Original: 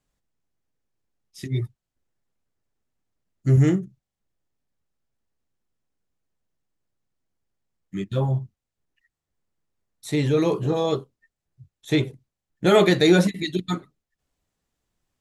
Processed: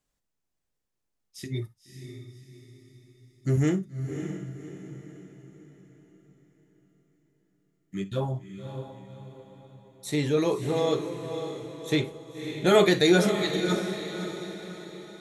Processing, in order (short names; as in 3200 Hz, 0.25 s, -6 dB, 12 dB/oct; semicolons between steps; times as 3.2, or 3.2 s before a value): tone controls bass -3 dB, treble +3 dB; diffused feedback echo 0.572 s, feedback 46%, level -8 dB; on a send at -13 dB: reverb, pre-delay 3 ms; on the sum: gain -3 dB